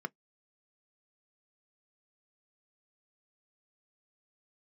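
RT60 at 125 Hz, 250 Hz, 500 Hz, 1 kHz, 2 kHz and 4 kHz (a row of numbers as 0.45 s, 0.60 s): 0.15 s, 0.15 s, 0.10 s, 0.10 s, 0.10 s, 0.10 s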